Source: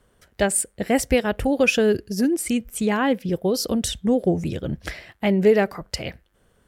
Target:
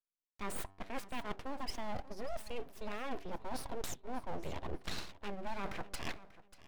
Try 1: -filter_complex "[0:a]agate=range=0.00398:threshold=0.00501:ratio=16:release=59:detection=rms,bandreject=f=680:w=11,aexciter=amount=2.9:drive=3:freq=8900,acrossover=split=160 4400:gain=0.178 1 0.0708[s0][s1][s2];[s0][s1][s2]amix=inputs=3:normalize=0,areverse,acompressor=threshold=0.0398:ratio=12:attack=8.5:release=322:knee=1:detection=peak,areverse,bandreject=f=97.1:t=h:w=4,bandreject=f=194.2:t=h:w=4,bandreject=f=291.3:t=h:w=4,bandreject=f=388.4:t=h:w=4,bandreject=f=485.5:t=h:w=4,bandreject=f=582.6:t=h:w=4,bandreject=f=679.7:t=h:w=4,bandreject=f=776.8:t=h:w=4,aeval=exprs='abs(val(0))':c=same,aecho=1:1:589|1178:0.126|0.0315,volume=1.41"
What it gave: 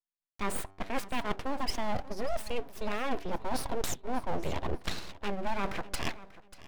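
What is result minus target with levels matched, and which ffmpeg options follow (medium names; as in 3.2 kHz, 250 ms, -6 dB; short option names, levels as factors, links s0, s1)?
compression: peak gain reduction -8.5 dB
-filter_complex "[0:a]agate=range=0.00398:threshold=0.00501:ratio=16:release=59:detection=rms,bandreject=f=680:w=11,aexciter=amount=2.9:drive=3:freq=8900,acrossover=split=160 4400:gain=0.178 1 0.0708[s0][s1][s2];[s0][s1][s2]amix=inputs=3:normalize=0,areverse,acompressor=threshold=0.0141:ratio=12:attack=8.5:release=322:knee=1:detection=peak,areverse,bandreject=f=97.1:t=h:w=4,bandreject=f=194.2:t=h:w=4,bandreject=f=291.3:t=h:w=4,bandreject=f=388.4:t=h:w=4,bandreject=f=485.5:t=h:w=4,bandreject=f=582.6:t=h:w=4,bandreject=f=679.7:t=h:w=4,bandreject=f=776.8:t=h:w=4,aeval=exprs='abs(val(0))':c=same,aecho=1:1:589|1178:0.126|0.0315,volume=1.41"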